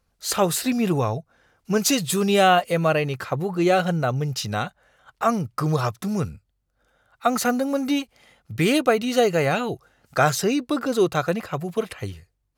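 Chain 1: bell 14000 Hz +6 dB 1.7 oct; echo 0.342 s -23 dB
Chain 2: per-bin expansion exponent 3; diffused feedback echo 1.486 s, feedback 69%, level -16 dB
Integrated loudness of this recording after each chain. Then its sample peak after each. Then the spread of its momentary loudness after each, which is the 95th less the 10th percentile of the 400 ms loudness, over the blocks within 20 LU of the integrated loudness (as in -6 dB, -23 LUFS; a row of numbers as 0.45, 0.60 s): -22.0, -29.0 LUFS; -4.5, -9.0 dBFS; 10, 17 LU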